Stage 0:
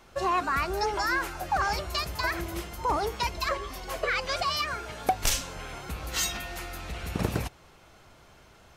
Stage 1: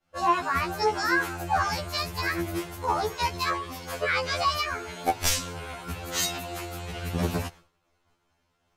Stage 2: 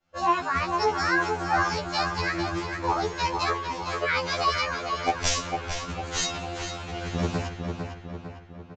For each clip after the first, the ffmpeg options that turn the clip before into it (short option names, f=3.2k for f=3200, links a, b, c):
-af "agate=range=-33dB:threshold=-42dB:ratio=3:detection=peak,afftfilt=real='re*2*eq(mod(b,4),0)':imag='im*2*eq(mod(b,4),0)':win_size=2048:overlap=0.75,volume=4dB"
-filter_complex "[0:a]asplit=2[a][b];[b]adelay=452,lowpass=f=3.3k:p=1,volume=-5dB,asplit=2[c][d];[d]adelay=452,lowpass=f=3.3k:p=1,volume=0.53,asplit=2[e][f];[f]adelay=452,lowpass=f=3.3k:p=1,volume=0.53,asplit=2[g][h];[h]adelay=452,lowpass=f=3.3k:p=1,volume=0.53,asplit=2[i][j];[j]adelay=452,lowpass=f=3.3k:p=1,volume=0.53,asplit=2[k][l];[l]adelay=452,lowpass=f=3.3k:p=1,volume=0.53,asplit=2[m][n];[n]adelay=452,lowpass=f=3.3k:p=1,volume=0.53[o];[a][c][e][g][i][k][m][o]amix=inputs=8:normalize=0,aresample=16000,aresample=44100"